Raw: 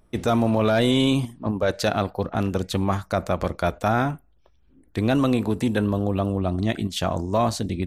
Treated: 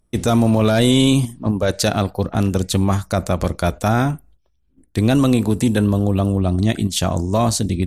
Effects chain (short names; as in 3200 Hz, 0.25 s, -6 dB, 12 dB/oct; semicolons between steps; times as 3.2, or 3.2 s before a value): bell 9200 Hz +13.5 dB 2 oct; gate -52 dBFS, range -13 dB; low shelf 360 Hz +8.5 dB